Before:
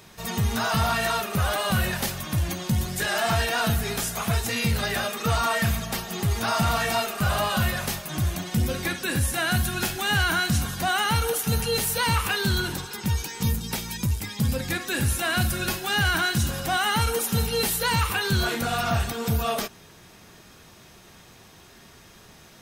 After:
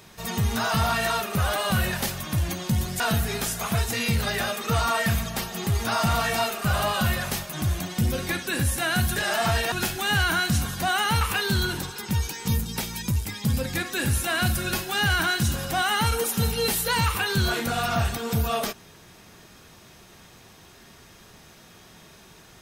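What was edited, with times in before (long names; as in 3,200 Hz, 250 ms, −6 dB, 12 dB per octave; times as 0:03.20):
0:03.00–0:03.56: move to 0:09.72
0:11.21–0:12.16: remove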